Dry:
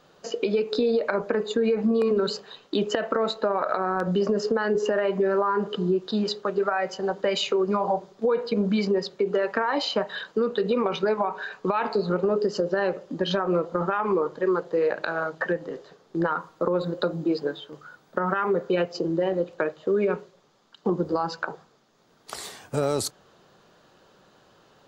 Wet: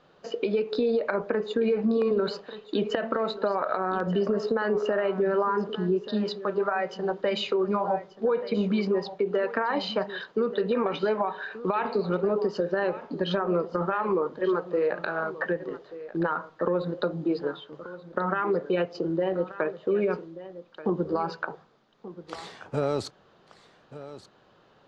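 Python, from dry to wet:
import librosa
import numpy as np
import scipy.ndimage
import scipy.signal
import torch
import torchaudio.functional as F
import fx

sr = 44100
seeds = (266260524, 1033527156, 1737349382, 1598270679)

y = scipy.signal.sosfilt(scipy.signal.butter(2, 3800.0, 'lowpass', fs=sr, output='sos'), x)
y = y + 10.0 ** (-15.0 / 20.0) * np.pad(y, (int(1182 * sr / 1000.0), 0))[:len(y)]
y = y * librosa.db_to_amplitude(-2.0)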